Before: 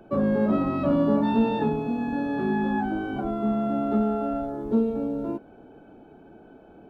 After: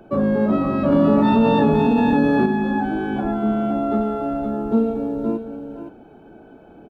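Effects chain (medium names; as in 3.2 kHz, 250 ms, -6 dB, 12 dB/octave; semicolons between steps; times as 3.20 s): delay 515 ms -8.5 dB; 0.92–2.46 s: level flattener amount 70%; trim +4 dB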